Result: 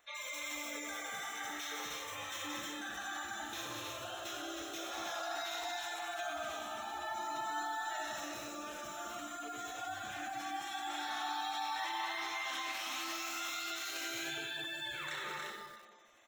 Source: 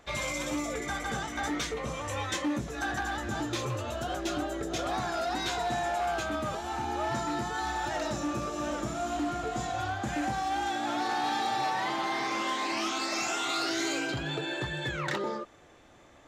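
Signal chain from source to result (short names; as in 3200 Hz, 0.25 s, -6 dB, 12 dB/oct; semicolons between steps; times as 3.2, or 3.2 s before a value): median filter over 5 samples; pre-emphasis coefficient 0.97; resonator 110 Hz, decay 1.7 s, mix 50%; tapped delay 0.174/0.177/0.225/0.312/0.361/0.623 s -10/-12/-6.5/-5/-18/-17 dB; Schroeder reverb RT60 0.8 s, combs from 27 ms, DRR 1.5 dB; limiter -35.5 dBFS, peak gain reduction 7.5 dB; notch 4700 Hz, Q 5.9; spectral gate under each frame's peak -20 dB strong; high shelf 3900 Hz -9.5 dB; lo-fi delay 93 ms, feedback 55%, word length 10-bit, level -8.5 dB; gain +10 dB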